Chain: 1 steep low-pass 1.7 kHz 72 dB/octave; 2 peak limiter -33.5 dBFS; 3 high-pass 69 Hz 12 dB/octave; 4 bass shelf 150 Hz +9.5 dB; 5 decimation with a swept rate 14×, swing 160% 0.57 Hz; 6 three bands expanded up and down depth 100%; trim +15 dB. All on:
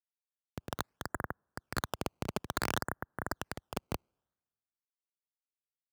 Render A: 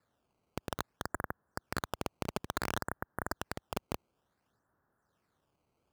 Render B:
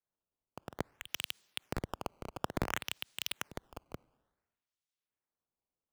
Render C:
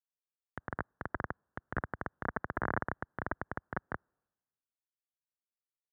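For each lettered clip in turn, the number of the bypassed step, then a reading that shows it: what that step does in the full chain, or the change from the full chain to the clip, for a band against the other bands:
6, crest factor change -2.5 dB; 1, 4 kHz band +7.0 dB; 5, 2 kHz band +2.5 dB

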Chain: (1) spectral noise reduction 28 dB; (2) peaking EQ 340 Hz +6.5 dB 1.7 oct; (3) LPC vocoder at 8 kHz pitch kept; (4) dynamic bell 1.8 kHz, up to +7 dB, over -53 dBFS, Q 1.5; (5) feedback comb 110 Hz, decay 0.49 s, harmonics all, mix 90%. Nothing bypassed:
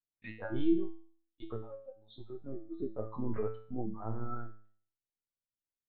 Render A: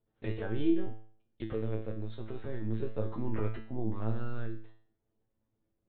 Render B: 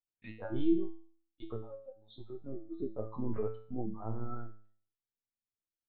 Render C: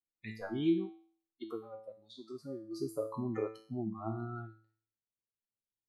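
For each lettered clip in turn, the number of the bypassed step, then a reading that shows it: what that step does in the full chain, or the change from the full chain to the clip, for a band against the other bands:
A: 1, 125 Hz band +6.0 dB; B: 4, 2 kHz band -5.5 dB; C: 3, momentary loudness spread change -2 LU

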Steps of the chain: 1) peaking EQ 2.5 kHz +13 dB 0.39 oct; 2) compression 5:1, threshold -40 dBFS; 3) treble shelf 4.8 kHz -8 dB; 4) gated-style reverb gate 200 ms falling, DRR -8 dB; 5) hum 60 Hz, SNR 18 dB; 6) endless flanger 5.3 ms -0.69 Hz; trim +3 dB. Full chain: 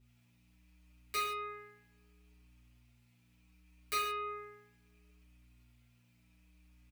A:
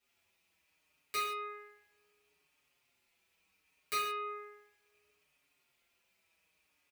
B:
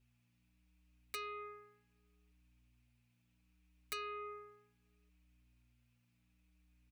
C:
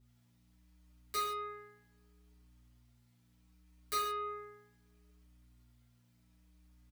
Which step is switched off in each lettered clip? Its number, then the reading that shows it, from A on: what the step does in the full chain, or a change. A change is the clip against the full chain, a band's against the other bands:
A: 5, momentary loudness spread change -3 LU; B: 4, momentary loudness spread change -4 LU; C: 1, 2 kHz band -7.0 dB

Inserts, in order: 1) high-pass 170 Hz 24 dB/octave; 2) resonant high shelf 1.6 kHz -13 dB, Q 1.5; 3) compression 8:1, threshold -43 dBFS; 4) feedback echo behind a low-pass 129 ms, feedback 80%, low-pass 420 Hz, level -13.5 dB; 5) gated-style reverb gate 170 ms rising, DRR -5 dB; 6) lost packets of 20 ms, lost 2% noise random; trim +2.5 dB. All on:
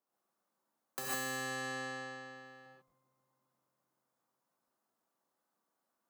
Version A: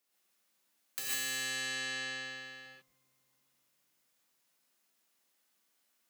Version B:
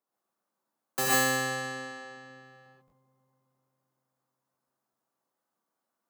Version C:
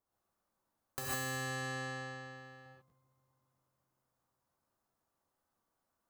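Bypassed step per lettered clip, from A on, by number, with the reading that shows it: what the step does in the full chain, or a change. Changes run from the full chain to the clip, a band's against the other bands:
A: 2, 4 kHz band +14.5 dB; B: 3, mean gain reduction 3.5 dB; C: 1, 125 Hz band +9.5 dB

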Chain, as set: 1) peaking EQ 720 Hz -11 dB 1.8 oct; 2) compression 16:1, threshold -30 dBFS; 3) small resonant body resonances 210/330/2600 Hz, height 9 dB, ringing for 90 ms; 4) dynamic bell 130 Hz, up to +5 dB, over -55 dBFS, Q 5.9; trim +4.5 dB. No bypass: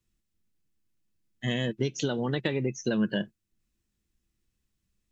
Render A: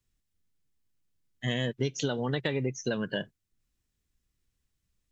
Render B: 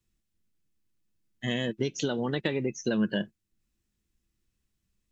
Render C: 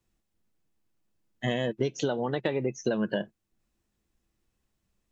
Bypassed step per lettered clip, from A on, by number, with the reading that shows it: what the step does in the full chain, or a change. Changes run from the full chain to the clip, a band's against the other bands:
3, 250 Hz band -4.0 dB; 4, 125 Hz band -3.0 dB; 1, 1 kHz band +6.5 dB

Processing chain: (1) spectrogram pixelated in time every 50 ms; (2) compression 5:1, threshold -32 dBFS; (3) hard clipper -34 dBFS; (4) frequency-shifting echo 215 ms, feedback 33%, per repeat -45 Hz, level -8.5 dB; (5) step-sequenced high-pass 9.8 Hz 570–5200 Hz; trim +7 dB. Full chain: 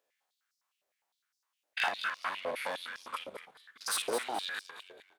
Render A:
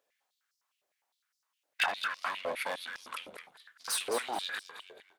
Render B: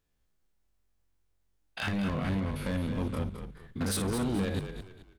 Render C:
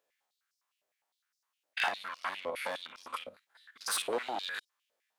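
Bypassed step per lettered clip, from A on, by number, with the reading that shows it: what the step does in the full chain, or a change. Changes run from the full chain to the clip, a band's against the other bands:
1, crest factor change +2.0 dB; 5, 250 Hz band +24.5 dB; 4, momentary loudness spread change -7 LU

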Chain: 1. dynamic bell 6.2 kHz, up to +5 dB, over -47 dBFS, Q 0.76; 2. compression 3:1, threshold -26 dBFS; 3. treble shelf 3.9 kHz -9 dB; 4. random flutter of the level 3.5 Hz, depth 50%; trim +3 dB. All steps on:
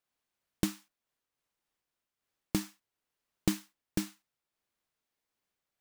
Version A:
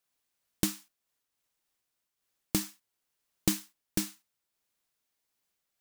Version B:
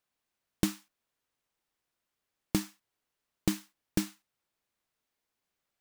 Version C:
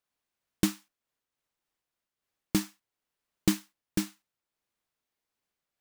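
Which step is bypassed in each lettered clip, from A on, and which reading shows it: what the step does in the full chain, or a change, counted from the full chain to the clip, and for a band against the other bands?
3, 8 kHz band +7.0 dB; 4, momentary loudness spread change -2 LU; 2, crest factor change -1.5 dB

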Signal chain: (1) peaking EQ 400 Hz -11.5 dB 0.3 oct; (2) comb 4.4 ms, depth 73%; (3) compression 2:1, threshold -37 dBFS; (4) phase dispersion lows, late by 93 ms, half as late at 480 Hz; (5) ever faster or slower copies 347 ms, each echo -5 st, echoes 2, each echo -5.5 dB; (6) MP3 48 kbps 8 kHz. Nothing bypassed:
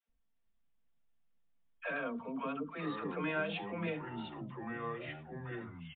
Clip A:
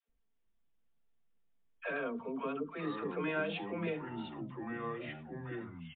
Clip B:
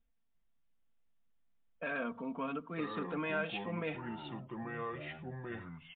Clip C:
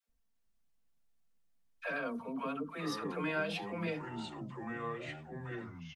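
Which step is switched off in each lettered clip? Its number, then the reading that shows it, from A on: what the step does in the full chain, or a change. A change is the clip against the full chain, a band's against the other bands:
1, 500 Hz band +2.5 dB; 4, crest factor change +1.5 dB; 6, 4 kHz band +2.5 dB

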